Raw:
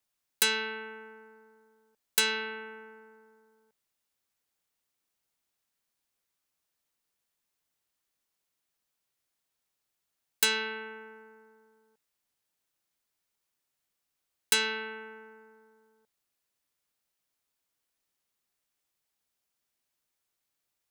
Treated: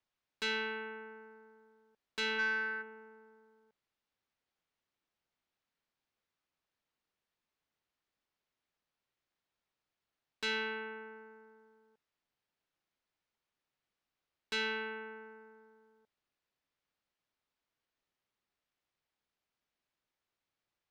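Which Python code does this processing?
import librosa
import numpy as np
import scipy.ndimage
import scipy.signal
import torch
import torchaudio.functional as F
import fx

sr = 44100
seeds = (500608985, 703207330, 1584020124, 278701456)

y = fx.peak_eq(x, sr, hz=1600.0, db=13.5, octaves=0.92, at=(2.38, 2.81), fade=0.02)
y = 10.0 ** (-27.5 / 20.0) * np.tanh(y / 10.0 ** (-27.5 / 20.0))
y = fx.air_absorb(y, sr, metres=170.0)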